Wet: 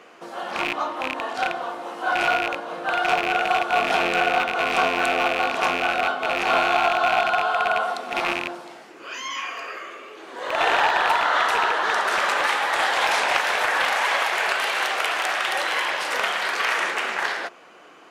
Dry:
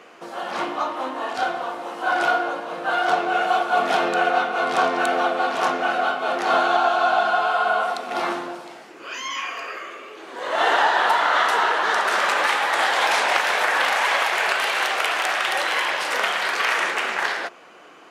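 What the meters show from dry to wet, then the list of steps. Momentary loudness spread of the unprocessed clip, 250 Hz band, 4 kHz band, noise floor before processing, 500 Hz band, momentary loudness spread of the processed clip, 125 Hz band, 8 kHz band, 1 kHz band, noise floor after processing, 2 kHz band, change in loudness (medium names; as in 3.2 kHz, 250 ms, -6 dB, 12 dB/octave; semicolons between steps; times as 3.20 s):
12 LU, -2.0 dB, -0.5 dB, -44 dBFS, -1.5 dB, 11 LU, no reading, -1.0 dB, -1.5 dB, -46 dBFS, -0.5 dB, -1.0 dB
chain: rattle on loud lows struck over -38 dBFS, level -11 dBFS; trim -1.5 dB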